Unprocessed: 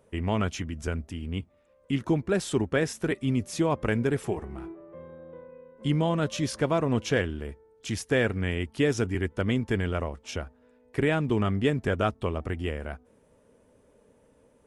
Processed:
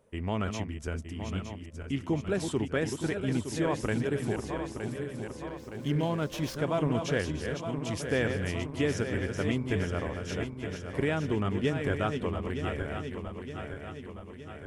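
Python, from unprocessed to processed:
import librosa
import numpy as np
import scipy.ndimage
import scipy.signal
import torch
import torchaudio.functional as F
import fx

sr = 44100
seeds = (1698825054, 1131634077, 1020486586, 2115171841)

y = fx.reverse_delay_fb(x, sr, ms=458, feedback_pct=74, wet_db=-6.5)
y = fx.running_max(y, sr, window=3, at=(5.47, 6.57))
y = F.gain(torch.from_numpy(y), -4.5).numpy()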